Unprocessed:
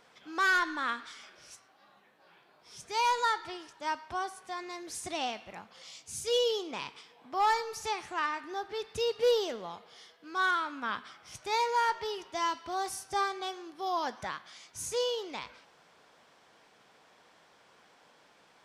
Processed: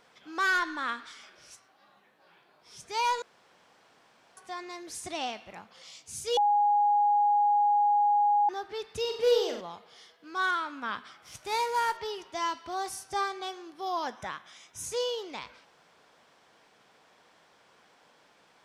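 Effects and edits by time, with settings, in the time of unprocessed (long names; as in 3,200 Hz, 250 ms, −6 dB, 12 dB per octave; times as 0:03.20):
0:03.22–0:04.37: fill with room tone
0:06.37–0:08.49: beep over 825 Hz −20.5 dBFS
0:09.00–0:09.61: flutter between parallel walls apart 7.8 metres, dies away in 0.48 s
0:11.22–0:11.97: variable-slope delta modulation 64 kbit/s
0:14.07–0:14.84: Butterworth band-reject 4,500 Hz, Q 6.2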